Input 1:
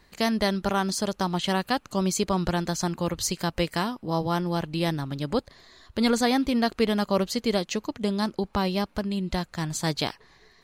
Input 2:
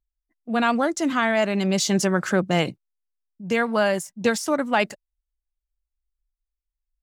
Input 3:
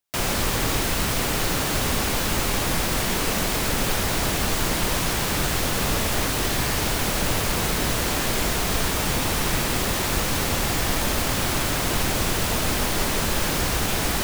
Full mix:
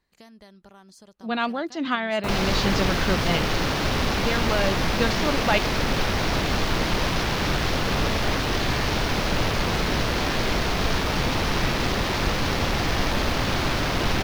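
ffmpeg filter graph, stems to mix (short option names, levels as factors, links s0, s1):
-filter_complex "[0:a]acompressor=threshold=0.0251:ratio=2.5,volume=0.141,asplit=2[s0][s1];[1:a]lowpass=f=5000:w=0.5412,lowpass=f=5000:w=1.3066,equalizer=f=3900:w=1.5:g=7,adelay=750,volume=0.841[s2];[2:a]afwtdn=0.0251,adelay=2100,volume=1.12[s3];[s1]apad=whole_len=343005[s4];[s2][s4]sidechaincompress=threshold=0.00316:ratio=8:attack=31:release=282[s5];[s0][s5][s3]amix=inputs=3:normalize=0"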